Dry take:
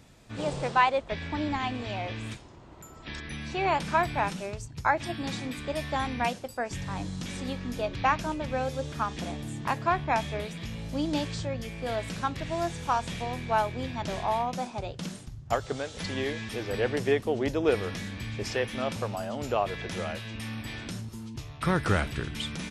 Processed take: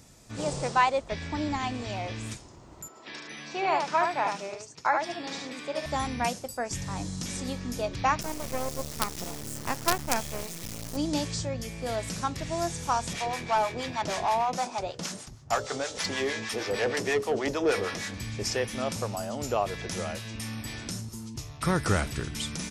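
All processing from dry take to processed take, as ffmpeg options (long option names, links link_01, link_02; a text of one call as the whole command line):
ffmpeg -i in.wav -filter_complex "[0:a]asettb=1/sr,asplit=3[link_01][link_02][link_03];[link_01]atrim=end=2.884[link_04];[link_02]atrim=start=2.88:end=5.86,asetpts=PTS-STARTPTS,afade=type=in:duration=0.004:curve=qsin,afade=type=out:start_time=2.976:duration=0.004:curve=qsin,highpass=350,lowpass=4400,aecho=1:1:74:0.631,atrim=end_sample=131418[link_05];[link_03]atrim=start=5.856[link_06];[link_04][link_05]acrossfade=duration=0.004:curve1=hsin:curve2=qsin[link_07];[link_07][link_06]acrossfade=duration=0.004:curve1=qsin:curve2=hsin,asettb=1/sr,asplit=3[link_08][link_09][link_10];[link_08]atrim=end=8.214[link_11];[link_09]atrim=start=8.21:end=10.97,asetpts=PTS-STARTPTS,afade=type=in:duration=0.004:curve=qsin,afade=type=out:start_time=2.756:duration=0.004:curve=qsin,equalizer=frequency=540:width=3.3:gain=2.5,acrusher=bits=4:dc=4:mix=0:aa=0.000001[link_12];[link_10]atrim=start=10.966[link_13];[link_11][link_12]acrossfade=duration=0.004:curve1=hsin:curve2=qsin[link_14];[link_14][link_13]acrossfade=duration=0.004:curve1=qsin:curve2=hsin,asettb=1/sr,asplit=3[link_15][link_16][link_17];[link_15]atrim=end=13.134[link_18];[link_16]atrim=start=13.13:end=18.14,asetpts=PTS-STARTPTS,afade=type=in:duration=0.004:curve=qsin,afade=type=out:start_time=5.006:duration=0.004:curve=qsin,bandreject=frequency=60:width_type=h:width=6,bandreject=frequency=120:width_type=h:width=6,bandreject=frequency=180:width_type=h:width=6,bandreject=frequency=240:width_type=h:width=6,bandreject=frequency=300:width_type=h:width=6,bandreject=frequency=360:width_type=h:width=6,bandreject=frequency=420:width_type=h:width=6,bandreject=frequency=480:width_type=h:width=6,bandreject=frequency=540:width_type=h:width=6,bandreject=frequency=600:width_type=h:width=6,acrossover=split=730[link_19][link_20];[link_19]aeval=exprs='val(0)*(1-0.7/2+0.7/2*cos(2*PI*6.4*n/s))':channel_layout=same[link_21];[link_20]aeval=exprs='val(0)*(1-0.7/2-0.7/2*cos(2*PI*6.4*n/s))':channel_layout=same[link_22];[link_21][link_22]amix=inputs=2:normalize=0,asplit=2[link_23][link_24];[link_24]highpass=frequency=720:poles=1,volume=17dB,asoftclip=type=tanh:threshold=-15.5dB[link_25];[link_23][link_25]amix=inputs=2:normalize=0,lowpass=frequency=2900:poles=1,volume=-6dB[link_26];[link_17]atrim=start=18.136[link_27];[link_18][link_26]acrossfade=duration=0.004:curve1=hsin:curve2=qsin[link_28];[link_28][link_27]acrossfade=duration=0.004:curve1=qsin:curve2=hsin,highshelf=frequency=4400:width_type=q:width=1.5:gain=7,bandreject=frequency=1600:width=26" out.wav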